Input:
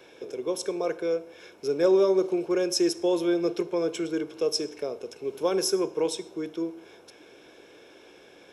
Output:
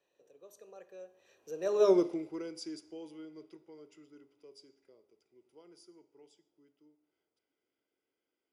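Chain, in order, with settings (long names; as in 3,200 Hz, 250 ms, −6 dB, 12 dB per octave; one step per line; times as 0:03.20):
source passing by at 0:01.90, 34 m/s, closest 3.1 metres
hum removal 206.4 Hz, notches 35
level −1 dB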